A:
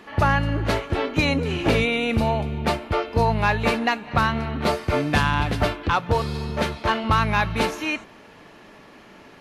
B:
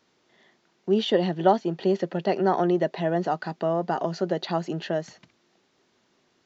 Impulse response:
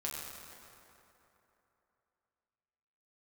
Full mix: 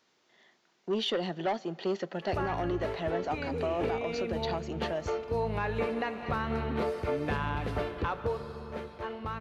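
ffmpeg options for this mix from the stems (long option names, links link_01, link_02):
-filter_complex "[0:a]equalizer=frequency=450:width=3.8:gain=9.5,acrossover=split=2800[link_01][link_02];[link_02]acompressor=threshold=-40dB:ratio=4:attack=1:release=60[link_03];[link_01][link_03]amix=inputs=2:normalize=0,adelay=2150,volume=-8dB,afade=type=in:start_time=5.35:duration=0.31:silence=0.473151,afade=type=out:start_time=7.92:duration=0.57:silence=0.251189,asplit=2[link_04][link_05];[link_05]volume=-10.5dB[link_06];[1:a]asoftclip=type=tanh:threshold=-16.5dB,lowshelf=frequency=430:gain=-8,volume=-2dB,asplit=2[link_07][link_08];[link_08]volume=-23.5dB[link_09];[2:a]atrim=start_sample=2205[link_10];[link_06][link_09]amix=inputs=2:normalize=0[link_11];[link_11][link_10]afir=irnorm=-1:irlink=0[link_12];[link_04][link_07][link_12]amix=inputs=3:normalize=0,alimiter=limit=-21.5dB:level=0:latency=1:release=258"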